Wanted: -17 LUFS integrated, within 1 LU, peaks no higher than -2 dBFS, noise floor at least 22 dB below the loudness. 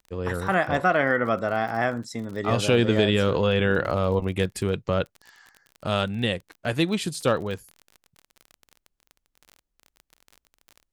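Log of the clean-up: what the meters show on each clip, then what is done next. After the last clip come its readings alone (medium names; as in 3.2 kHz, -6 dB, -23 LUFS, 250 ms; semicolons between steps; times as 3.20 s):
tick rate 30 per s; loudness -24.5 LUFS; peak level -6.5 dBFS; loudness target -17.0 LUFS
-> de-click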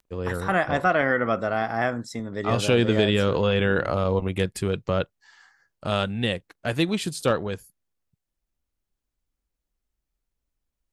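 tick rate 0.092 per s; loudness -24.5 LUFS; peak level -6.5 dBFS; loudness target -17.0 LUFS
-> trim +7.5 dB; peak limiter -2 dBFS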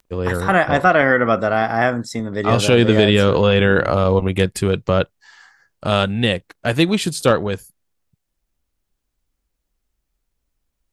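loudness -17.0 LUFS; peak level -2.0 dBFS; noise floor -76 dBFS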